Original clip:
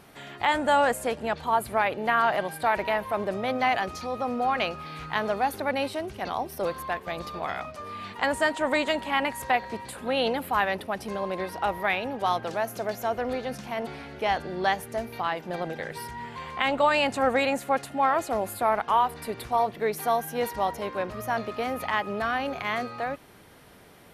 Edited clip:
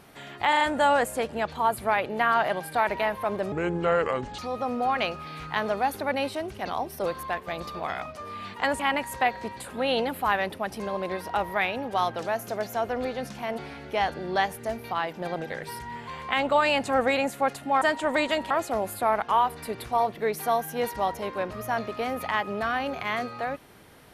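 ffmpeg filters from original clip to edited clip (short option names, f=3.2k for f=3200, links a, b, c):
-filter_complex "[0:a]asplit=9[a][b][c][d][e][f][g][h][i];[a]atrim=end=0.532[j];[b]atrim=start=0.488:end=0.532[k];[c]atrim=start=0.488:end=0.532[l];[d]atrim=start=0.488:end=3.404[m];[e]atrim=start=3.4:end=3.98,asetpts=PTS-STARTPTS,asetrate=29547,aresample=44100,atrim=end_sample=38176,asetpts=PTS-STARTPTS[n];[f]atrim=start=3.976:end=8.392[o];[g]atrim=start=9.078:end=18.102[p];[h]atrim=start=8.388:end=9.082[q];[i]atrim=start=18.098[r];[j][k]acrossfade=d=0.004:c1=hsin:c2=hsin[s];[s][l]acrossfade=d=0.004:c1=hsin:c2=hsin[t];[t][m]acrossfade=d=0.004:c1=hsin:c2=hsin[u];[u][n]acrossfade=d=0.004:c1=hsin:c2=hsin[v];[v][o]acrossfade=d=0.004:c1=hsin:c2=hsin[w];[w][p]acrossfade=d=0.004:c1=hsin:c2=hsin[x];[x][q]acrossfade=d=0.004:c1=hsin:c2=hsin[y];[y][r]acrossfade=d=0.004:c1=hsin:c2=hsin"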